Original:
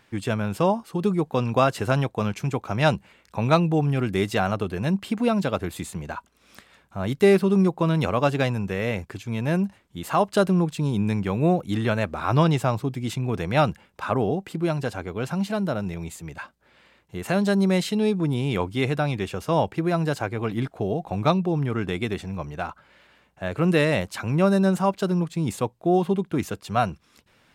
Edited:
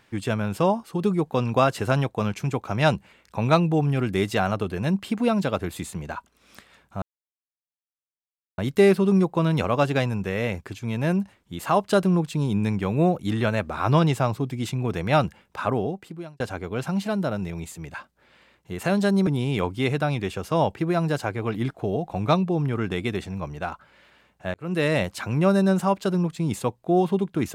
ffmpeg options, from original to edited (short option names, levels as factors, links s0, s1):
-filter_complex "[0:a]asplit=5[s0][s1][s2][s3][s4];[s0]atrim=end=7.02,asetpts=PTS-STARTPTS,afade=t=out:st=7.016:d=0.004:c=hsin,apad=pad_dur=1.56[s5];[s1]atrim=start=7.02:end=14.84,asetpts=PTS-STARTPTS,afade=t=in:d=0.004:c=hsin,afade=t=out:st=7.07:d=0.75[s6];[s2]atrim=start=14.84:end=17.712,asetpts=PTS-STARTPTS,afade=t=in:d=0.004:c=hsin[s7];[s3]atrim=start=18.238:end=23.51,asetpts=PTS-STARTPTS,afade=t=out:st=5.268:d=0.004:c=hsin[s8];[s4]atrim=start=23.51,asetpts=PTS-STARTPTS,afade=t=in:d=0.4[s9];[s5][s6][s7]concat=n=3:v=0:a=1[s10];[s8][s9]concat=n=2:v=0:a=1[s11];[s10][s11]acrossfade=d=0.004:c1=hsin:c2=hsin"